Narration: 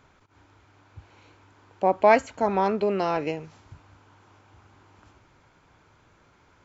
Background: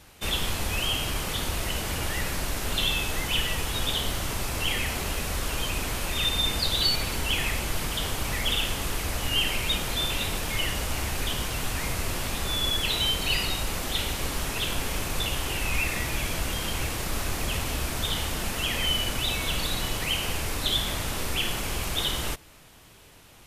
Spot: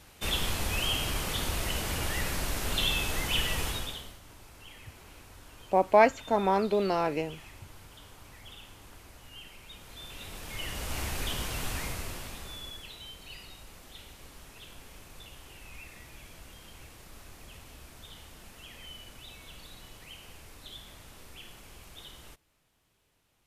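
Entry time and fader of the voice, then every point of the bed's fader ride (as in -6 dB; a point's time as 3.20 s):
3.90 s, -2.5 dB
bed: 3.68 s -2.5 dB
4.21 s -23 dB
9.67 s -23 dB
10.99 s -4.5 dB
11.75 s -4.5 dB
12.97 s -20.5 dB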